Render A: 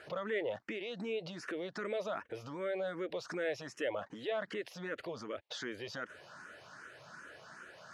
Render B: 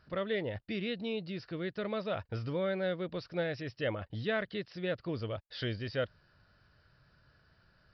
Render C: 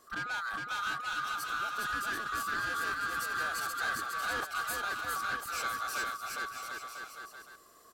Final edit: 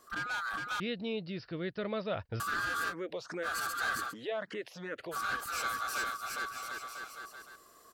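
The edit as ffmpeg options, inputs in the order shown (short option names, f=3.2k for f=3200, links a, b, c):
-filter_complex "[0:a]asplit=2[a][b];[2:a]asplit=4[c][d][e][f];[c]atrim=end=0.802[g];[1:a]atrim=start=0.798:end=2.402[h];[d]atrim=start=2.398:end=2.94[i];[a]atrim=start=2.88:end=3.48[j];[e]atrim=start=3.42:end=4.14[k];[b]atrim=start=4.08:end=5.17[l];[f]atrim=start=5.11[m];[g][h]acrossfade=d=0.004:c1=hsin:c2=hsin[n];[n][i]acrossfade=d=0.004:c1=hsin:c2=hsin[o];[o][j]acrossfade=d=0.06:c1=tri:c2=tri[p];[p][k]acrossfade=d=0.06:c1=tri:c2=tri[q];[q][l]acrossfade=d=0.06:c1=tri:c2=tri[r];[r][m]acrossfade=d=0.06:c1=tri:c2=tri"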